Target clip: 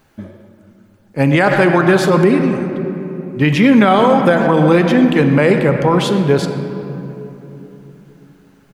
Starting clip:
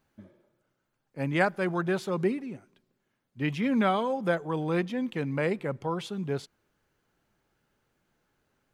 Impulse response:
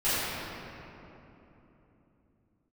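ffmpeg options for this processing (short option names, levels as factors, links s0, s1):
-filter_complex "[0:a]asplit=2[s0][s1];[s1]adelay=120,highpass=300,lowpass=3400,asoftclip=type=hard:threshold=0.106,volume=0.2[s2];[s0][s2]amix=inputs=2:normalize=0,asplit=2[s3][s4];[1:a]atrim=start_sample=2205[s5];[s4][s5]afir=irnorm=-1:irlink=0,volume=0.0891[s6];[s3][s6]amix=inputs=2:normalize=0,alimiter=level_in=8.91:limit=0.891:release=50:level=0:latency=1,volume=0.891"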